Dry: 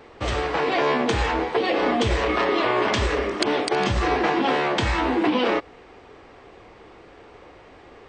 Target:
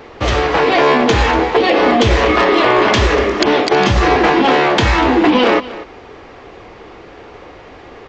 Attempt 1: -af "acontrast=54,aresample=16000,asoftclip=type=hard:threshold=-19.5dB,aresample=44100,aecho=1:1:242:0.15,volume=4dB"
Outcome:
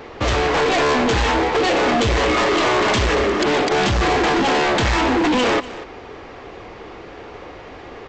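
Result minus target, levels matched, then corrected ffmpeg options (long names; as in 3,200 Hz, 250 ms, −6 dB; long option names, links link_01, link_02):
hard clipping: distortion +20 dB
-af "acontrast=54,aresample=16000,asoftclip=type=hard:threshold=-8.5dB,aresample=44100,aecho=1:1:242:0.15,volume=4dB"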